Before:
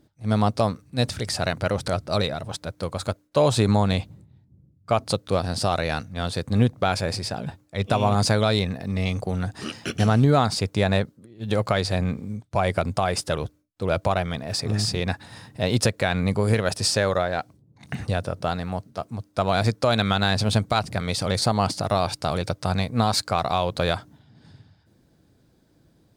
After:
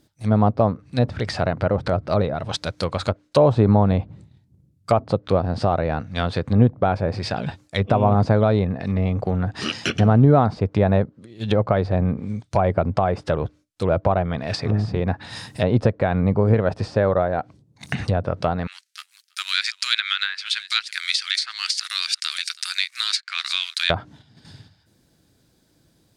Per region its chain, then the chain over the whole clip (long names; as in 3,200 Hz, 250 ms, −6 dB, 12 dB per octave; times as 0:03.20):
0:18.67–0:23.90: mu-law and A-law mismatch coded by A + Butterworth high-pass 1,600 Hz + single-tap delay 326 ms −21 dB
whole clip: noise gate −51 dBFS, range −6 dB; treble cut that deepens with the level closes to 880 Hz, closed at −21 dBFS; high-shelf EQ 2,100 Hz +10 dB; level +4 dB